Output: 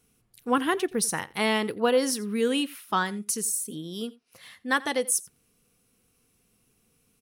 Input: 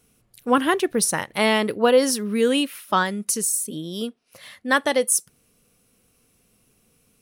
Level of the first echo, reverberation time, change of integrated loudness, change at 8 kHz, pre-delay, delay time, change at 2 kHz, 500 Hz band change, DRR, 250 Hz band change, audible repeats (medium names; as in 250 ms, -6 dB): -21.5 dB, no reverb, -5.5 dB, -5.0 dB, no reverb, 87 ms, -5.0 dB, -6.5 dB, no reverb, -5.0 dB, 1